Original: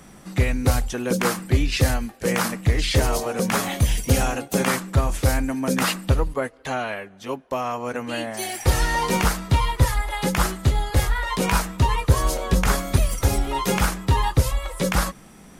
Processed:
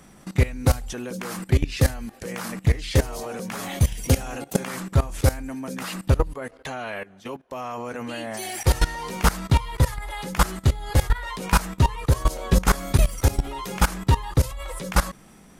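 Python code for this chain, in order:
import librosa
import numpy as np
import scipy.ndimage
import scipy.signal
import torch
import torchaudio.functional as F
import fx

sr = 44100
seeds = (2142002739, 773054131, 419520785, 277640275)

y = fx.level_steps(x, sr, step_db=18)
y = y * librosa.db_to_amplitude(4.0)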